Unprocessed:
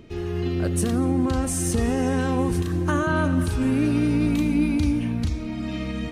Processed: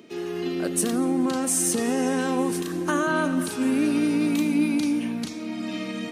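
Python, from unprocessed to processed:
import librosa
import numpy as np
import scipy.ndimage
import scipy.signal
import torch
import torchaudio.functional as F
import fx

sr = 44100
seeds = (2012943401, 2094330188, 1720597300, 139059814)

y = scipy.signal.sosfilt(scipy.signal.butter(4, 200.0, 'highpass', fs=sr, output='sos'), x)
y = fx.high_shelf(y, sr, hz=4600.0, db=6.5)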